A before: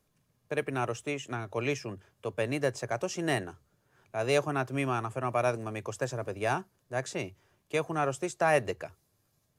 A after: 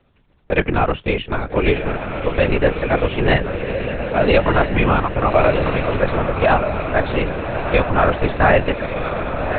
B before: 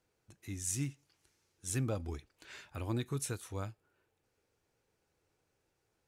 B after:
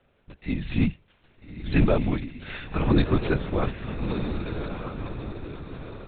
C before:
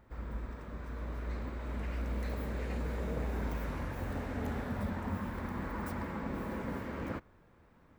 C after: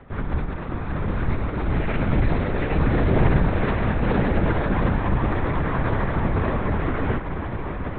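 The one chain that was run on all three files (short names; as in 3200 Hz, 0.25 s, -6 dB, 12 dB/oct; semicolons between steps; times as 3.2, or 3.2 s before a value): diffused feedback echo 1.271 s, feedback 46%, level -6 dB; LPC vocoder at 8 kHz whisper; maximiser +17 dB; gain -2.5 dB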